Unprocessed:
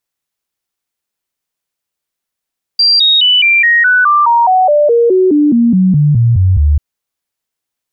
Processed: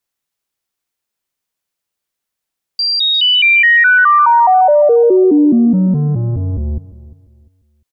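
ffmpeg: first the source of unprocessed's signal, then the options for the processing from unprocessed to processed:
-f lavfi -i "aevalsrc='0.531*clip(min(mod(t,0.21),0.21-mod(t,0.21))/0.005,0,1)*sin(2*PI*4730*pow(2,-floor(t/0.21)/3)*mod(t,0.21))':d=3.99:s=44100"
-filter_complex "[0:a]acrossover=split=2800[a][b];[b]acompressor=threshold=-17dB:ratio=4:attack=1:release=60[c];[a][c]amix=inputs=2:normalize=0,acrossover=split=200|2400[d][e][f];[d]asoftclip=type=tanh:threshold=-17.5dB[g];[g][e][f]amix=inputs=3:normalize=0,asplit=2[h][i];[i]adelay=349,lowpass=f=2k:p=1,volume=-18dB,asplit=2[j][k];[k]adelay=349,lowpass=f=2k:p=1,volume=0.3,asplit=2[l][m];[m]adelay=349,lowpass=f=2k:p=1,volume=0.3[n];[h][j][l][n]amix=inputs=4:normalize=0"

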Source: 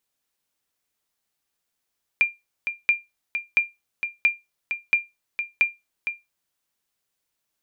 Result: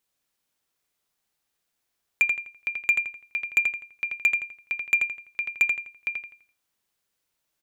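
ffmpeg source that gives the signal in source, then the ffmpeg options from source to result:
-f lavfi -i "aevalsrc='0.316*(sin(2*PI*2390*mod(t,0.68))*exp(-6.91*mod(t,0.68)/0.2)+0.376*sin(2*PI*2390*max(mod(t,0.68)-0.46,0))*exp(-6.91*max(mod(t,0.68)-0.46,0)/0.2))':d=4.08:s=44100"
-filter_complex "[0:a]asoftclip=type=hard:threshold=-13.5dB,asplit=2[a][b];[b]adelay=84,lowpass=f=4.1k:p=1,volume=-3.5dB,asplit=2[c][d];[d]adelay=84,lowpass=f=4.1k:p=1,volume=0.37,asplit=2[e][f];[f]adelay=84,lowpass=f=4.1k:p=1,volume=0.37,asplit=2[g][h];[h]adelay=84,lowpass=f=4.1k:p=1,volume=0.37,asplit=2[i][j];[j]adelay=84,lowpass=f=4.1k:p=1,volume=0.37[k];[a][c][e][g][i][k]amix=inputs=6:normalize=0"

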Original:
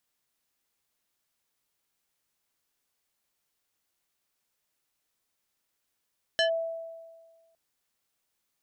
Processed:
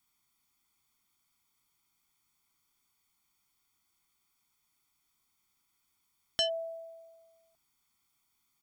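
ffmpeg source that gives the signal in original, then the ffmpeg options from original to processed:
-f lavfi -i "aevalsrc='0.1*pow(10,-3*t/1.54)*sin(2*PI*659*t+1.6*clip(1-t/0.11,0,1)*sin(2*PI*3.61*659*t))':d=1.16:s=44100"
-af "aecho=1:1:0.9:0.95"

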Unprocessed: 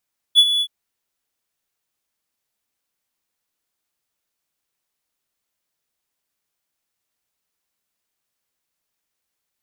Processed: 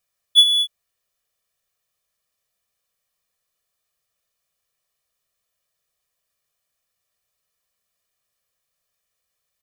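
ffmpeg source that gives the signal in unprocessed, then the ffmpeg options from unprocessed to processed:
-f lavfi -i "aevalsrc='0.631*(1-4*abs(mod(3420*t+0.25,1)-0.5))':d=0.322:s=44100,afade=t=in:d=0.038,afade=t=out:st=0.038:d=0.055:silence=0.299,afade=t=out:st=0.26:d=0.062"
-af "aecho=1:1:1.7:0.69"

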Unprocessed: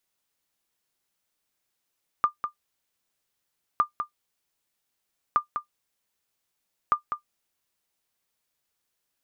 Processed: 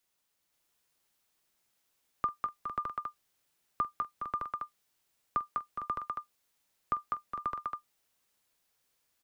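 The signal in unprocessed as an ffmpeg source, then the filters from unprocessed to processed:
-f lavfi -i "aevalsrc='0.266*(sin(2*PI*1200*mod(t,1.56))*exp(-6.91*mod(t,1.56)/0.11)+0.398*sin(2*PI*1200*max(mod(t,1.56)-0.2,0))*exp(-6.91*max(mod(t,1.56)-0.2,0)/0.11))':d=6.24:s=44100"
-filter_complex "[0:a]acrossover=split=290|490[a][b][c];[c]alimiter=limit=-22dB:level=0:latency=1:release=39[d];[a][b][d]amix=inputs=3:normalize=0,aecho=1:1:46|219|414|456|537|612:0.126|0.141|0.335|0.299|0.708|0.531"

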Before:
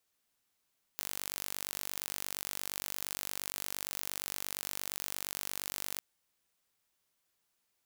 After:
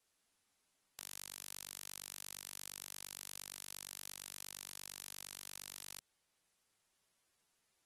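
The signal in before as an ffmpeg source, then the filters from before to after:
-f lavfi -i "aevalsrc='0.299*eq(mod(n,907),0)':d=5.01:s=44100"
-filter_complex "[0:a]alimiter=limit=-19dB:level=0:latency=1:release=37,acrossover=split=220|3000[a][b][c];[b]acompressor=threshold=-55dB:ratio=6[d];[a][d][c]amix=inputs=3:normalize=0" -ar 48000 -c:a aac -b:a 32k

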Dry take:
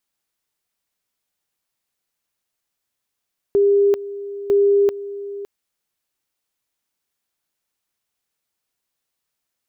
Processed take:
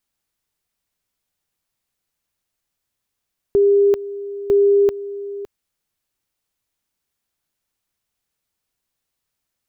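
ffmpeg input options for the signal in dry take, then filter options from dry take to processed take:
-f lavfi -i "aevalsrc='pow(10,(-11.5-15.5*gte(mod(t,0.95),0.39))/20)*sin(2*PI*402*t)':d=1.9:s=44100"
-af "lowshelf=f=150:g=9.5"

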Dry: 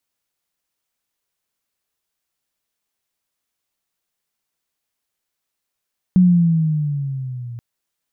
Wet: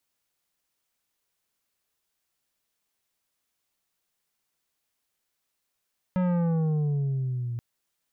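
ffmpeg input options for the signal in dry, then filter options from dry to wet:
-f lavfi -i "aevalsrc='pow(10,(-7.5-21*t/1.43)/20)*sin(2*PI*185*1.43/(-8*log(2)/12)*(exp(-8*log(2)/12*t/1.43)-1))':d=1.43:s=44100"
-af "asoftclip=type=tanh:threshold=-23.5dB"

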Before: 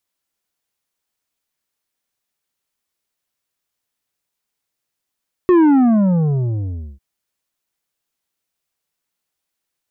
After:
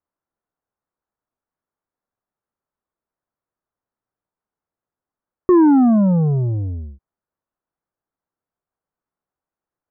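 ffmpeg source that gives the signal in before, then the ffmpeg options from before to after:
-f lavfi -i "aevalsrc='0.355*clip((1.5-t)/1.41,0,1)*tanh(2.51*sin(2*PI*370*1.5/log(65/370)*(exp(log(65/370)*t/1.5)-1)))/tanh(2.51)':d=1.5:s=44100"
-af "lowpass=f=1.4k:w=0.5412,lowpass=f=1.4k:w=1.3066"

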